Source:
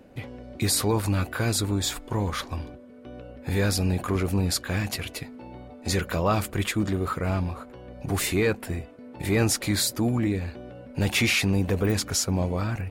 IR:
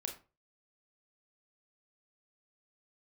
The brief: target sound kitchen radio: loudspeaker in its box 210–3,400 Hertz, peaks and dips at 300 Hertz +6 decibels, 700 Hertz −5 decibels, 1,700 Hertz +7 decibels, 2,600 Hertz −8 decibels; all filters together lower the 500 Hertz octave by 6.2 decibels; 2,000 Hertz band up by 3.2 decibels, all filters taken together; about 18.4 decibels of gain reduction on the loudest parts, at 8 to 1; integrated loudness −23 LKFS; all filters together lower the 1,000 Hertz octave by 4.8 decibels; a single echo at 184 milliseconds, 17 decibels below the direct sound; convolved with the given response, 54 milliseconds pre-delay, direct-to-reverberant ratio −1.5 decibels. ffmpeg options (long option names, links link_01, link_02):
-filter_complex "[0:a]equalizer=frequency=500:width_type=o:gain=-7.5,equalizer=frequency=1000:width_type=o:gain=-6,equalizer=frequency=2000:width_type=o:gain=5,acompressor=threshold=-40dB:ratio=8,aecho=1:1:184:0.141,asplit=2[link_01][link_02];[1:a]atrim=start_sample=2205,adelay=54[link_03];[link_02][link_03]afir=irnorm=-1:irlink=0,volume=2.5dB[link_04];[link_01][link_04]amix=inputs=2:normalize=0,highpass=210,equalizer=frequency=300:width_type=q:width=4:gain=6,equalizer=frequency=700:width_type=q:width=4:gain=-5,equalizer=frequency=1700:width_type=q:width=4:gain=7,equalizer=frequency=2600:width_type=q:width=4:gain=-8,lowpass=frequency=3400:width=0.5412,lowpass=frequency=3400:width=1.3066,volume=19dB"